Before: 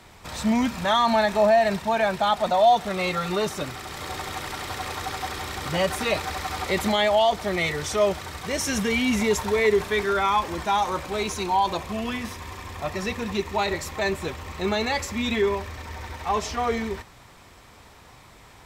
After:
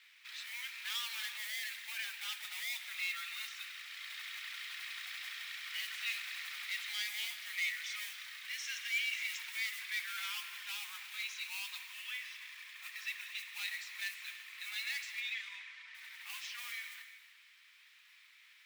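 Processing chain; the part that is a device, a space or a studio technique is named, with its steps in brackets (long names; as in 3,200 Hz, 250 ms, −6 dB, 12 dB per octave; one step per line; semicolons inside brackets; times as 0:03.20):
carbon microphone (band-pass filter 460–3,000 Hz; soft clipping −23.5 dBFS, distortion −9 dB; noise that follows the level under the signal 20 dB)
inverse Chebyshev high-pass filter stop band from 460 Hz, stop band 70 dB
0:15.20–0:15.95: high-frequency loss of the air 120 metres
reverb whose tail is shaped and stops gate 390 ms flat, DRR 9 dB
level −2.5 dB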